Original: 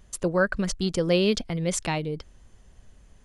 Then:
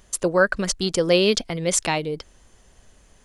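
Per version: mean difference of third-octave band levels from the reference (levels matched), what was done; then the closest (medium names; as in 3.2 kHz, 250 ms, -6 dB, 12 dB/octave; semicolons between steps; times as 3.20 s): 2.5 dB: tone controls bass -8 dB, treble +3 dB; trim +5.5 dB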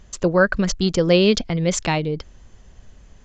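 1.0 dB: trim +6.5 dB; SBC 192 kbps 16 kHz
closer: second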